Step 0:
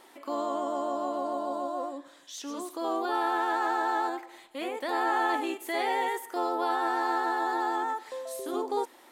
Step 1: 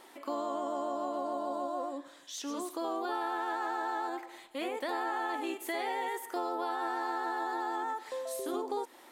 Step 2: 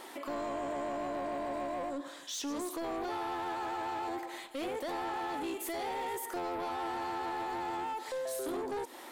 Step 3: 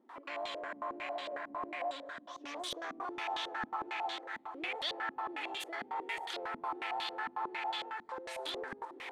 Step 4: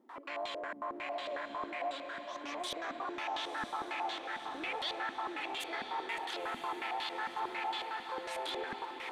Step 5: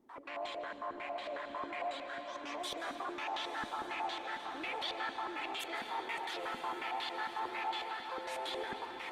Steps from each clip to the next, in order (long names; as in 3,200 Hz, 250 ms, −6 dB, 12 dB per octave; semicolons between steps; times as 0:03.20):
downward compressor, threshold −31 dBFS, peak gain reduction 8 dB
dynamic equaliser 1,700 Hz, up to −6 dB, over −48 dBFS, Q 0.99; in parallel at +2.5 dB: brickwall limiter −36 dBFS, peak gain reduction 11 dB; on the sum: soft clipping −32.5 dBFS, distortion −12 dB
first difference; feedback delay with all-pass diffusion 452 ms, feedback 63%, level −10 dB; low-pass on a step sequencer 11 Hz 240–3,500 Hz; level +11.5 dB
in parallel at +0.5 dB: brickwall limiter −33.5 dBFS, peak gain reduction 9 dB; on the sum: feedback delay with all-pass diffusion 1,012 ms, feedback 57%, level −8.5 dB; level −4.5 dB
on a send at −9.5 dB: convolution reverb RT60 2.0 s, pre-delay 144 ms; on the sum: level −1.5 dB; Opus 20 kbit/s 48,000 Hz